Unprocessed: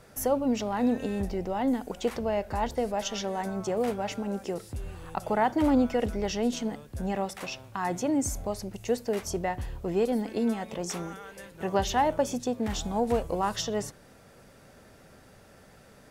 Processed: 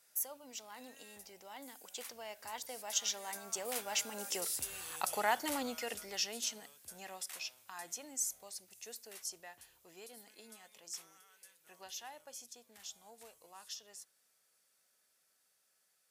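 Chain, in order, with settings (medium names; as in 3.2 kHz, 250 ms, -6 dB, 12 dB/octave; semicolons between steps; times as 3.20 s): Doppler pass-by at 4.71 s, 11 m/s, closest 6.2 m; differentiator; trim +14.5 dB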